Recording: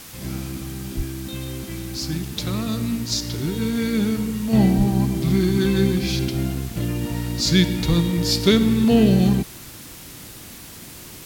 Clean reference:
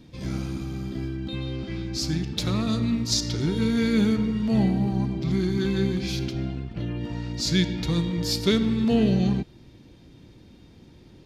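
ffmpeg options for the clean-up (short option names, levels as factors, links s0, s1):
-filter_complex "[0:a]asplit=3[s0][s1][s2];[s0]afade=t=out:st=0.96:d=0.02[s3];[s1]highpass=f=140:w=0.5412,highpass=f=140:w=1.3066,afade=t=in:st=0.96:d=0.02,afade=t=out:st=1.08:d=0.02[s4];[s2]afade=t=in:st=1.08:d=0.02[s5];[s3][s4][s5]amix=inputs=3:normalize=0,asplit=3[s6][s7][s8];[s6]afade=t=out:st=4.77:d=0.02[s9];[s7]highpass=f=140:w=0.5412,highpass=f=140:w=1.3066,afade=t=in:st=4.77:d=0.02,afade=t=out:st=4.89:d=0.02[s10];[s8]afade=t=in:st=4.89:d=0.02[s11];[s9][s10][s11]amix=inputs=3:normalize=0,asplit=3[s12][s13][s14];[s12]afade=t=out:st=7.88:d=0.02[s15];[s13]highpass=f=140:w=0.5412,highpass=f=140:w=1.3066,afade=t=in:st=7.88:d=0.02,afade=t=out:st=8:d=0.02[s16];[s14]afade=t=in:st=8:d=0.02[s17];[s15][s16][s17]amix=inputs=3:normalize=0,afwtdn=0.01,asetnsamples=n=441:p=0,asendcmd='4.53 volume volume -5.5dB',volume=1"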